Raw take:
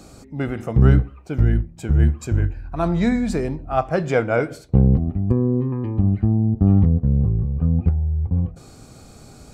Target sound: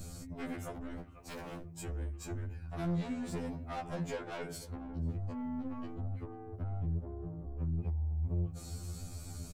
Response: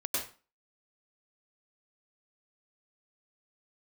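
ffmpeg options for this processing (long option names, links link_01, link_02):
-filter_complex "[0:a]asettb=1/sr,asplit=3[link_01][link_02][link_03];[link_01]atrim=end=4.954[link_04];[link_02]atrim=start=4.95:end=5.94,asetpts=PTS-STARTPTS,afade=type=in:duration=0.004:curve=qsin,afade=type=out:start_time=0.986:duration=0.004:curve=qsin,equalizer=frequency=5300:width=0.62:gain=11.5[link_05];[link_03]atrim=start=5.936[link_06];[link_04][link_05]acrossfade=duration=0.004:curve1=hsin:curve2=qsin[link_07];[link_07][link_06]acrossfade=duration=0.004:curve1=qsin:curve2=hsin,acrossover=split=150|2500[link_08][link_09][link_10];[link_08]acompressor=mode=upward:threshold=-23dB:ratio=2.5[link_11];[link_10]alimiter=level_in=10dB:limit=-24dB:level=0:latency=1:release=246,volume=-10dB[link_12];[link_11][link_09][link_12]amix=inputs=3:normalize=0,acompressor=threshold=-20dB:ratio=8,asplit=3[link_13][link_14][link_15];[link_13]afade=type=out:start_time=0.97:duration=0.02[link_16];[link_14]aeval=exprs='0.0237*(abs(mod(val(0)/0.0237+3,4)-2)-1)':channel_layout=same,afade=type=in:start_time=0.97:duration=0.02,afade=type=out:start_time=1.77:duration=0.02[link_17];[link_15]afade=type=in:start_time=1.77:duration=0.02[link_18];[link_16][link_17][link_18]amix=inputs=3:normalize=0,crystalizer=i=2:c=0,asoftclip=type=tanh:threshold=-28dB,asplit=2[link_19][link_20];[link_20]adelay=493,lowpass=frequency=1000:poles=1,volume=-15dB,asplit=2[link_21][link_22];[link_22]adelay=493,lowpass=frequency=1000:poles=1,volume=0.46,asplit=2[link_23][link_24];[link_24]adelay=493,lowpass=frequency=1000:poles=1,volume=0.46,asplit=2[link_25][link_26];[link_26]adelay=493,lowpass=frequency=1000:poles=1,volume=0.46[link_27];[link_19][link_21][link_23][link_25][link_27]amix=inputs=5:normalize=0,afftfilt=real='re*2*eq(mod(b,4),0)':imag='im*2*eq(mod(b,4),0)':win_size=2048:overlap=0.75,volume=-5dB"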